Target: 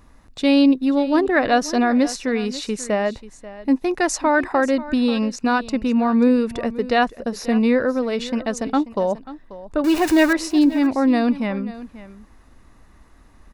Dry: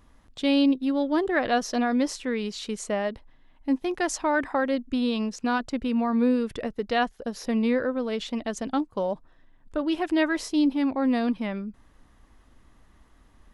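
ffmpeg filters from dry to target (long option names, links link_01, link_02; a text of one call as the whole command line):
ffmpeg -i in.wav -filter_complex "[0:a]asettb=1/sr,asplit=3[link_01][link_02][link_03];[link_01]atrim=end=9.844[link_04];[link_02]atrim=start=9.84:end=10.33,asetpts=PTS-STARTPTS,afade=type=in:duration=0.004:curve=qsin,afade=type=out:start_time=0.486:duration=0.004:curve=qsin,aeval=exprs='val(0)+0.5*0.0398*sgn(val(0))':channel_layout=same[link_05];[link_03]atrim=start=10.326[link_06];[link_04][link_05]acrossfade=duration=0.004:curve1=hsin:curve2=qsin[link_07];[link_07][link_06]acrossfade=duration=0.004:curve1=qsin:curve2=hsin,bandreject=frequency=3200:width=6.8,aecho=1:1:537:0.15,volume=6.5dB" out.wav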